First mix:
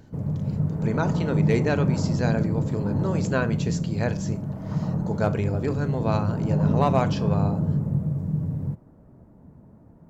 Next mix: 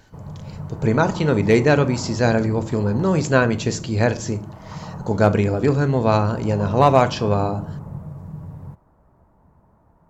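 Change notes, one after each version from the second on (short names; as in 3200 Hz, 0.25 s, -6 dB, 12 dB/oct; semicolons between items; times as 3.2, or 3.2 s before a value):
speech +8.5 dB; background: add ten-band EQ 125 Hz -7 dB, 250 Hz -10 dB, 500 Hz -4 dB, 1000 Hz +7 dB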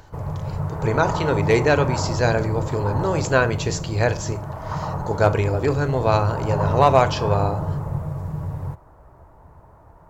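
background +10.0 dB; master: add bell 210 Hz -12.5 dB 0.76 oct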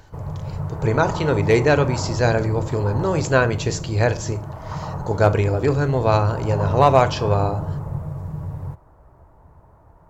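background -4.0 dB; master: add low shelf 410 Hz +3 dB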